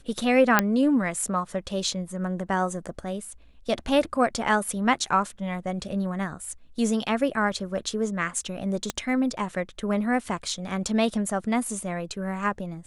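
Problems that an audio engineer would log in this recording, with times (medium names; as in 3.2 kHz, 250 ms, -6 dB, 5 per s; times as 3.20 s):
0.59 s: pop -3 dBFS
8.90 s: pop -11 dBFS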